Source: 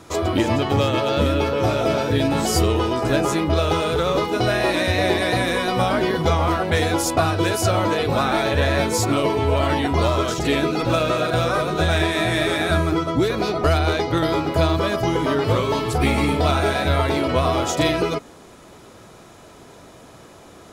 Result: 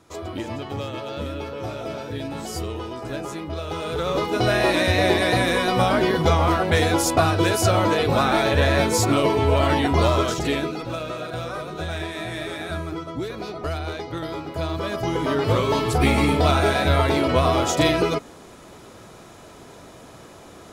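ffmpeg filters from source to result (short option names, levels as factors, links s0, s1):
-af "volume=3.55,afade=t=in:st=3.66:d=0.91:silence=0.266073,afade=t=out:st=10.16:d=0.69:silence=0.298538,afade=t=in:st=14.55:d=1.23:silence=0.298538"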